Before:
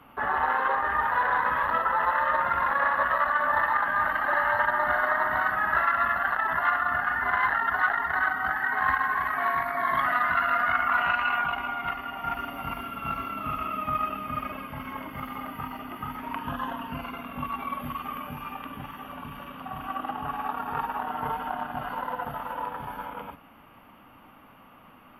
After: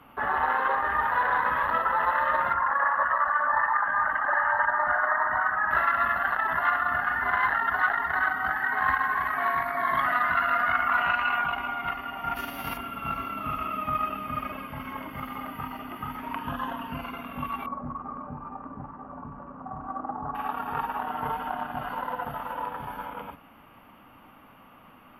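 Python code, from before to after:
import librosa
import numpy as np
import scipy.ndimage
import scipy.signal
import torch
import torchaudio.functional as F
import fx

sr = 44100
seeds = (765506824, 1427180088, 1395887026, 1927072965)

y = fx.envelope_sharpen(x, sr, power=1.5, at=(2.53, 5.71))
y = fx.envelope_flatten(y, sr, power=0.6, at=(12.35, 12.76), fade=0.02)
y = fx.lowpass(y, sr, hz=1200.0, slope=24, at=(17.66, 20.35))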